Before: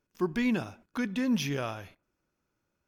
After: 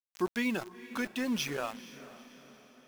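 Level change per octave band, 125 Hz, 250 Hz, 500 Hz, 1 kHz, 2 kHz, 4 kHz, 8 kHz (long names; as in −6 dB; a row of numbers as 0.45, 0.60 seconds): −10.0, −5.0, −1.5, 0.0, +0.5, +0.5, +1.5 decibels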